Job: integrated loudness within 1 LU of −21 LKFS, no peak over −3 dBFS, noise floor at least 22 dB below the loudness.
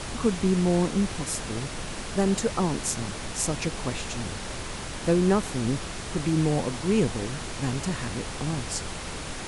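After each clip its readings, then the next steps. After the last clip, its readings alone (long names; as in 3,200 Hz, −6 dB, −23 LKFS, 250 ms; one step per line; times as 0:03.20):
background noise floor −36 dBFS; target noise floor −50 dBFS; integrated loudness −27.5 LKFS; sample peak −10.0 dBFS; target loudness −21.0 LKFS
→ noise reduction from a noise print 14 dB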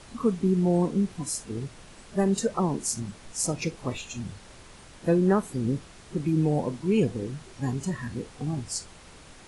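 background noise floor −50 dBFS; integrated loudness −28.0 LKFS; sample peak −10.5 dBFS; target loudness −21.0 LKFS
→ level +7 dB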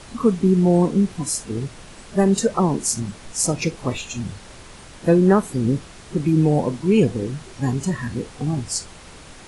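integrated loudness −21.0 LKFS; sample peak −3.5 dBFS; background noise floor −43 dBFS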